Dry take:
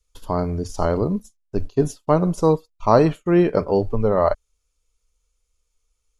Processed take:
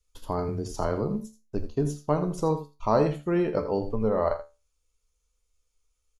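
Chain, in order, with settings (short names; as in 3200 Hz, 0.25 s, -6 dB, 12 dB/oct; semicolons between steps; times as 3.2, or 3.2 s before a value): 0.48–1.11 frequency shift +13 Hz; resonator 73 Hz, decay 0.25 s, harmonics all, mix 70%; in parallel at +1 dB: compressor, threshold -30 dBFS, peak gain reduction 15 dB; on the sum: echo 82 ms -12 dB; gain -5 dB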